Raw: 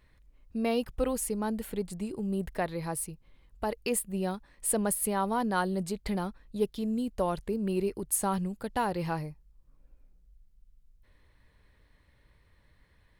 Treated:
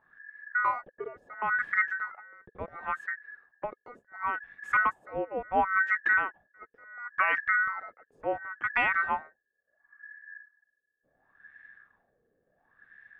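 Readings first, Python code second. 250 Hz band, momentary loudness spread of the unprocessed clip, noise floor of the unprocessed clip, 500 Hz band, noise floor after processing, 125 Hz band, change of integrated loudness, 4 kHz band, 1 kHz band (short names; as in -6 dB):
-16.0 dB, 7 LU, -65 dBFS, -6.5 dB, -80 dBFS, -18.0 dB, +2.5 dB, -7.0 dB, +4.0 dB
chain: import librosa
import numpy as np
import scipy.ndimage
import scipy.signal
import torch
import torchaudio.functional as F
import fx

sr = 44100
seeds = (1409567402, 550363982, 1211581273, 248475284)

y = fx.dynamic_eq(x, sr, hz=1200.0, q=1.9, threshold_db=-46.0, ratio=4.0, max_db=4)
y = y * np.sin(2.0 * np.pi * 1700.0 * np.arange(len(y)) / sr)
y = fx.filter_lfo_lowpass(y, sr, shape='sine', hz=0.71, low_hz=450.0, high_hz=1900.0, q=4.7)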